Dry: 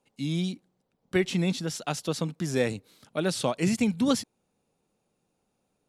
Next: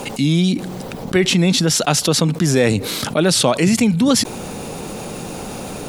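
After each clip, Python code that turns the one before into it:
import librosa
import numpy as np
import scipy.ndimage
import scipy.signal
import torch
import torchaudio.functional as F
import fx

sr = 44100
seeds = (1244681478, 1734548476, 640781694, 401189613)

y = fx.env_flatten(x, sr, amount_pct=70)
y = y * librosa.db_to_amplitude(8.0)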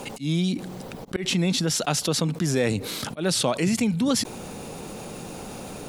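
y = fx.dmg_crackle(x, sr, seeds[0], per_s=51.0, level_db=-40.0)
y = fx.auto_swell(y, sr, attack_ms=112.0)
y = y * librosa.db_to_amplitude(-8.0)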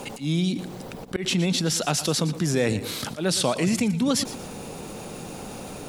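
y = fx.echo_feedback(x, sr, ms=117, feedback_pct=31, wet_db=-14.5)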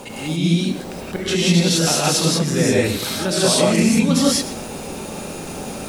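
y = fx.rev_gated(x, sr, seeds[1], gate_ms=210, shape='rising', drr_db=-6.5)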